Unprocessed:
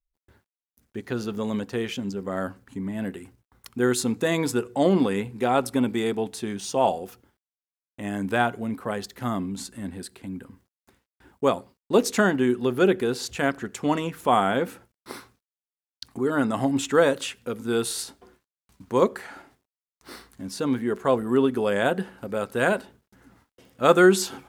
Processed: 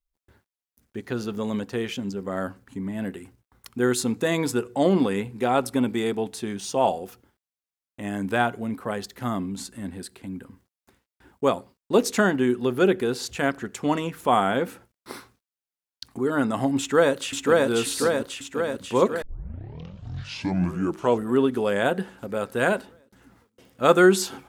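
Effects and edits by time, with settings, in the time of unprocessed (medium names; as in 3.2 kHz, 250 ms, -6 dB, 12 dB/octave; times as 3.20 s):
16.78–17.68 s: echo throw 540 ms, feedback 65%, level -0.5 dB
19.22 s: tape start 2.03 s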